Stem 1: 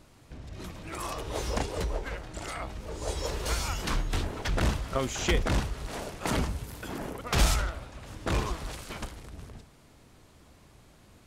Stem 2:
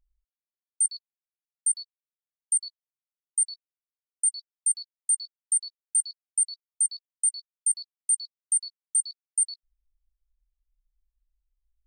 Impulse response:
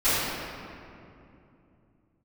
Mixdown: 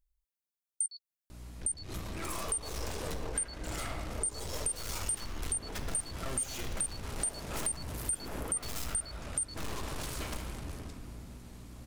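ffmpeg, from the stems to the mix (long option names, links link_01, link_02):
-filter_complex "[0:a]aeval=exprs='(tanh(79.4*val(0)+0.65)-tanh(0.65))/79.4':channel_layout=same,aeval=exprs='val(0)+0.00282*(sin(2*PI*60*n/s)+sin(2*PI*2*60*n/s)/2+sin(2*PI*3*60*n/s)/3+sin(2*PI*4*60*n/s)/4+sin(2*PI*5*60*n/s)/5)':channel_layout=same,adelay=1300,volume=2.5dB,asplit=2[link_01][link_02];[link_02]volume=-20dB[link_03];[1:a]volume=-4dB[link_04];[2:a]atrim=start_sample=2205[link_05];[link_03][link_05]afir=irnorm=-1:irlink=0[link_06];[link_01][link_04][link_06]amix=inputs=3:normalize=0,highshelf=frequency=7000:gain=8.5,acompressor=threshold=-32dB:ratio=6"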